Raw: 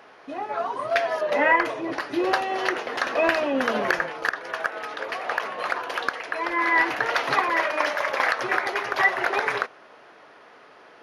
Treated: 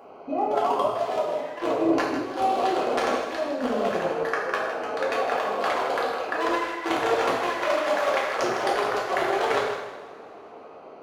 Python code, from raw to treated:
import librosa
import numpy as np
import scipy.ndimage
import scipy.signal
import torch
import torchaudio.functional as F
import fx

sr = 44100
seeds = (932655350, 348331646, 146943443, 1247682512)

y = fx.wiener(x, sr, points=25)
y = fx.bass_treble(y, sr, bass_db=-3, treble_db=5)
y = fx.over_compress(y, sr, threshold_db=-30.0, ratio=-0.5)
y = fx.echo_feedback(y, sr, ms=158, feedback_pct=29, wet_db=-10.0)
y = fx.rev_double_slope(y, sr, seeds[0], early_s=0.81, late_s=3.4, knee_db=-21, drr_db=-3.5)